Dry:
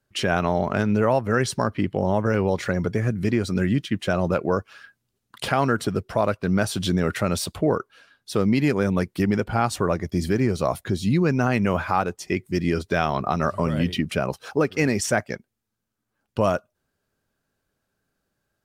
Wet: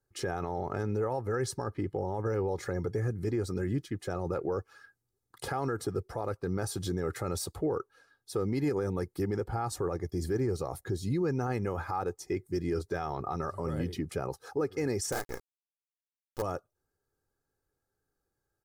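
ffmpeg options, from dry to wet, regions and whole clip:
-filter_complex "[0:a]asettb=1/sr,asplit=3[a][b][c];[a]atrim=end=15.124[d];[b]atrim=start=15.12:end=16.42,asetpts=PTS-STARTPTS,afade=t=in:d=0.004:c=qsin,afade=t=out:st=1.296:d=0.004:c=qsin,highpass=f=160:p=1,asplit=2[e][f];[f]adelay=33,volume=-4dB[g];[e][g]amix=inputs=2:normalize=0,atrim=end_sample=57330,acrusher=bits=4:dc=4:mix=0:aa=0.000001[h];[c]atrim=start=16.416[i];[d][h]acrossfade=d=0.004:c1=hsin:c2=qsin[j];[j][i]acrossfade=d=0.004:c1=qsin:c2=hsin,equalizer=f=2.8k:w=1.4:g=-14.5,aecho=1:1:2.4:0.59,alimiter=limit=-15.5dB:level=0:latency=1:release=24,volume=-7dB"

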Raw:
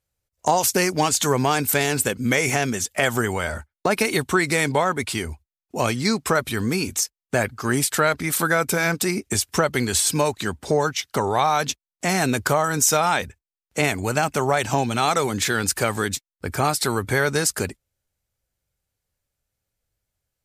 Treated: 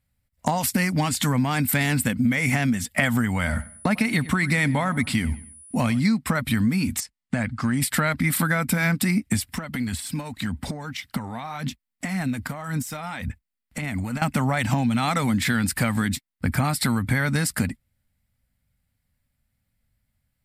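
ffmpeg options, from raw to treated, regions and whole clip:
-filter_complex "[0:a]asettb=1/sr,asplit=3[a][b][c];[a]atrim=end=3.414[d];[b]atrim=start=3.41:end=6,asetpts=PTS-STARTPTS,afade=t=in:d=0.004:c=qsin,afade=t=out:st=2.586:d=0.004:c=qsin,acrossover=split=8900[e][f];[f]acompressor=threshold=-39dB:ratio=4:attack=1:release=60[g];[e][g]amix=inputs=2:normalize=0,aeval=exprs='val(0)+0.00501*sin(2*PI*9800*n/s)':c=same,asplit=2[h][i];[i]adelay=95,lowpass=f=3.5k:p=1,volume=-19dB,asplit=2[j][k];[k]adelay=95,lowpass=f=3.5k:p=1,volume=0.36,asplit=2[l][m];[m]adelay=95,lowpass=f=3.5k:p=1,volume=0.36[n];[h][j][l][n]amix=inputs=4:normalize=0,atrim=end_sample=114219[o];[c]atrim=start=5.996[p];[d][o]acrossfade=d=0.004:c1=hsin:c2=qsin[q];[q][p]acrossfade=d=0.004:c1=qsin:c2=hsin,asettb=1/sr,asplit=3[r][s][t];[r]atrim=end=7.004[u];[s]atrim=start=7:end=7.82,asetpts=PTS-STARTPTS,afade=t=in:d=0.004:c=qsin,afade=t=out:st=0.816:d=0.004:c=qsin,lowpass=f=9.2k:w=0.5412,lowpass=f=9.2k:w=1.3066,acompressor=threshold=-28dB:ratio=2:attack=3.2:release=140:knee=1:detection=peak[v];[t]atrim=start=7.816[w];[u][v]acrossfade=d=0.004:c1=hsin:c2=qsin[x];[x][w]acrossfade=d=0.004:c1=qsin:c2=hsin,asettb=1/sr,asplit=3[y][z][aa];[y]atrim=end=9.444[ab];[z]atrim=start=9.44:end=14.22,asetpts=PTS-STARTPTS,afade=t=in:d=0.004:c=qsin,afade=t=out:st=4.776:d=0.004:c=qsin,acompressor=threshold=-30dB:ratio=16:attack=3.2:release=140:knee=1:detection=peak,aphaser=in_gain=1:out_gain=1:delay=4.4:decay=0.32:speed=1.8:type=sinusoidal[ac];[aa]atrim=start=14.216[ad];[ab][ac]acrossfade=d=0.004:c1=hsin:c2=qsin[ae];[ae][ad]acrossfade=d=0.004:c1=qsin:c2=hsin,lowshelf=f=300:t=q:w=3:g=6.5,acompressor=threshold=-21dB:ratio=5,equalizer=f=400:t=o:w=0.33:g=-7,equalizer=f=2k:t=o:w=0.33:g=7,equalizer=f=6.3k:t=o:w=0.33:g=-11,volume=2dB"

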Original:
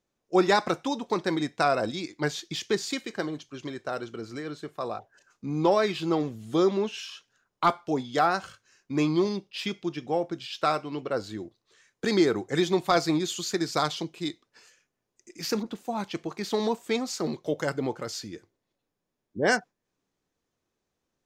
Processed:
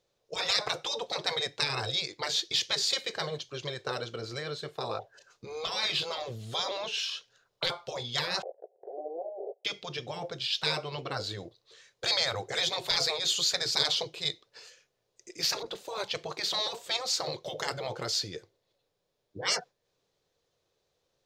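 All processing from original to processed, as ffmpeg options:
-filter_complex "[0:a]asettb=1/sr,asplit=3[a][b][c];[a]atrim=end=8.424[d];[b]atrim=start=8.42:end=9.65,asetpts=PTS-STARTPTS,afade=t=in:d=0.004:c=qsin,afade=t=out:st=1.226:d=0.004:c=qsin,aeval=exprs='val(0)+0.5*0.0299*sgn(val(0))':c=same,asuperpass=centerf=540:order=12:qfactor=1.4,agate=range=-23dB:threshold=-49dB:ratio=16:release=100:detection=peak[e];[c]atrim=start=9.646[f];[d][e]acrossfade=d=0.004:c1=hsin:c2=qsin[g];[g][f]acrossfade=d=0.004:c1=qsin:c2=hsin,afftfilt=real='re*lt(hypot(re,im),0.112)':imag='im*lt(hypot(re,im),0.112)':win_size=1024:overlap=0.75,equalizer=f=125:t=o:w=1:g=5,equalizer=f=250:t=o:w=1:g=-10,equalizer=f=500:t=o:w=1:g=11,equalizer=f=4k:t=o:w=1:g=10"

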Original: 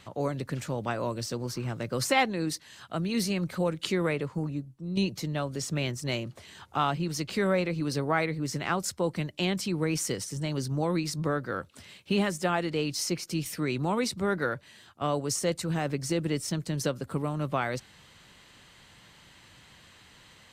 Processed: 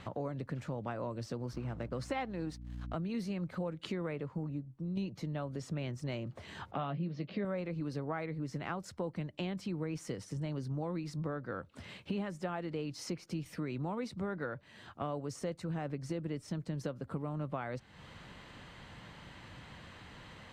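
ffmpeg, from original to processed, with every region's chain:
-filter_complex "[0:a]asettb=1/sr,asplit=3[a][b][c];[a]atrim=end=1.534[d];[b]atrim=start=1.53:end=2.96,asetpts=PTS-STARTPTS,afade=t=in:d=0.004:c=qsin,afade=t=out:st=1.426:d=0.004:c=qsin,lowpass=11k,aeval=exprs='sgn(val(0))*max(abs(val(0))-0.00398,0)':c=same,aeval=exprs='val(0)+0.00631*(sin(2*PI*60*n/s)+sin(2*PI*2*60*n/s)/2+sin(2*PI*3*60*n/s)/3+sin(2*PI*4*60*n/s)/4+sin(2*PI*5*60*n/s)/5)':c=same[e];[c]atrim=start=2.956[f];[d][e]acrossfade=d=0.004:c1=hsin:c2=qsin[g];[g][f]acrossfade=d=0.004:c1=qsin:c2=hsin,asettb=1/sr,asplit=3[h][i][j];[h]atrim=end=6.714[k];[i]atrim=start=6.71:end=7.45,asetpts=PTS-STARTPTS,afade=t=in:d=0.004:c=qsin,afade=t=out:st=0.736:d=0.004:c=qsin,highpass=140,equalizer=f=170:t=q:w=4:g=9,equalizer=f=610:t=q:w=4:g=6,equalizer=f=900:t=q:w=4:g=-7,equalizer=f=1.4k:t=q:w=4:g=-6,lowpass=f=4.2k:w=0.5412,lowpass=f=4.2k:w=1.3066,asplit=2[l][m];[m]adelay=15,volume=-9dB[n];[l][n]amix=inputs=2:normalize=0,atrim=end_sample=32634[o];[j]atrim=start=7.446[p];[k][o]acrossfade=d=0.004:c1=hsin:c2=qsin[q];[q][p]acrossfade=d=0.004:c1=qsin:c2=hsin,lowpass=f=1.3k:p=1,equalizer=f=380:t=o:w=0.29:g=-3,acompressor=threshold=-47dB:ratio=3,volume=7dB"

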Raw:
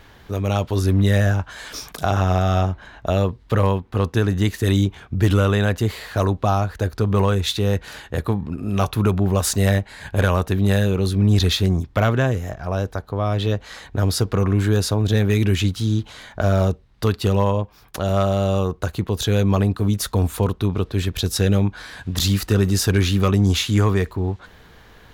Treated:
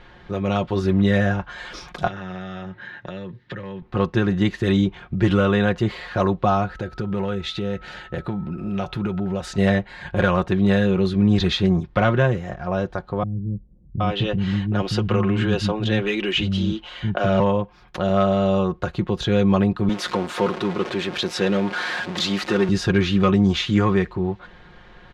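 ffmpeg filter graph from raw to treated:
-filter_complex "[0:a]asettb=1/sr,asplit=3[a][b][c];[a]atrim=end=2.074[d];[b]atrim=start=2.07:end=3.82,asetpts=PTS-STARTPTS,afade=t=in:d=0.004:c=qsin,afade=t=out:st=1.746:d=0.004:c=qsin,highpass=f=110:w=0.5412,highpass=f=110:w=1.3066,equalizer=f=110:t=q:w=4:g=6,equalizer=f=710:t=q:w=4:g=-9,equalizer=f=1.1k:t=q:w=4:g=-7,equalizer=f=1.8k:t=q:w=4:g=10,equalizer=f=3.7k:t=q:w=4:g=3,lowpass=f=7.7k:w=0.5412,lowpass=f=7.7k:w=1.3066,acompressor=threshold=-30dB:ratio=6:attack=3.2:release=140:knee=1:detection=peak[e];[c]atrim=start=3.816[f];[d][e]acrossfade=d=0.004:c1=hsin:c2=qsin[g];[g][f]acrossfade=d=0.004:c1=qsin:c2=hsin,asettb=1/sr,asplit=3[h][i][j];[h]atrim=end=6.674[k];[i]atrim=start=6.67:end=9.58,asetpts=PTS-STARTPTS,afade=t=in:d=0.004:c=qsin,afade=t=out:st=2.906:d=0.004:c=qsin,bandreject=f=1.1k:w=5.8,acompressor=threshold=-25dB:ratio=2:attack=3.2:release=140:knee=1:detection=peak,aeval=exprs='val(0)+0.00447*sin(2*PI*1300*n/s)':c=same[l];[j]atrim=start=9.576[m];[k][l]acrossfade=d=0.004:c1=hsin:c2=qsin[n];[n][m]acrossfade=d=0.004:c1=qsin:c2=hsin,asettb=1/sr,asplit=3[o][p][q];[o]atrim=end=13.234[r];[p]atrim=start=13.23:end=17.4,asetpts=PTS-STARTPTS,afade=t=in:d=0.004:c=qsin,afade=t=out:st=4.166:d=0.004:c=qsin,equalizer=f=2.9k:w=4.2:g=10.5,acrossover=split=250[s][t];[t]adelay=770[u];[s][u]amix=inputs=2:normalize=0,atrim=end_sample=183897[v];[q]atrim=start=17.396[w];[r][v]acrossfade=d=0.004:c1=hsin:c2=qsin[x];[x][w]acrossfade=d=0.004:c1=qsin:c2=hsin,asettb=1/sr,asplit=3[y][z][aa];[y]atrim=end=19.894[ab];[z]atrim=start=19.89:end=22.69,asetpts=PTS-STARTPTS,afade=t=in:d=0.004:c=qsin,afade=t=out:st=2.796:d=0.004:c=qsin,aeval=exprs='val(0)+0.5*0.0794*sgn(val(0))':c=same,highpass=260[ac];[aa]atrim=start=22.686[ad];[ab][ac]acrossfade=d=0.004:c1=hsin:c2=qsin[ae];[ae][ad]acrossfade=d=0.004:c1=qsin:c2=hsin,lowpass=3.4k,aecho=1:1:5.6:0.61"

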